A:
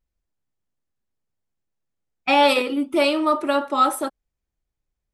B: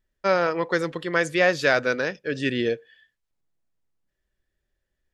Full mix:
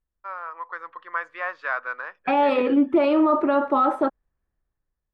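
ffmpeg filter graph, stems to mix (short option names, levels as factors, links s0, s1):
-filter_complex "[0:a]alimiter=limit=0.158:level=0:latency=1:release=39,volume=0.668[s0];[1:a]highpass=f=1100:t=q:w=4.8,volume=0.168[s1];[s0][s1]amix=inputs=2:normalize=0,lowpass=1500,dynaudnorm=f=220:g=7:m=2.82"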